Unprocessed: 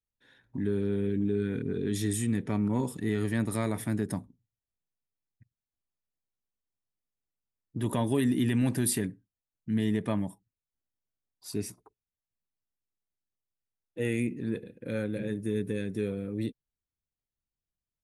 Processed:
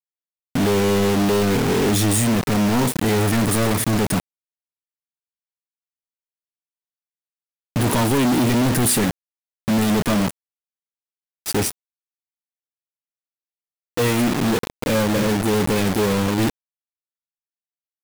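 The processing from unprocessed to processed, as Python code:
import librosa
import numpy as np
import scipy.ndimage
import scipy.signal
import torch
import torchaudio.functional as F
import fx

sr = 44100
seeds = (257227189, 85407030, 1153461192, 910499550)

y = fx.quant_companded(x, sr, bits=2)
y = y * 10.0 ** (8.5 / 20.0)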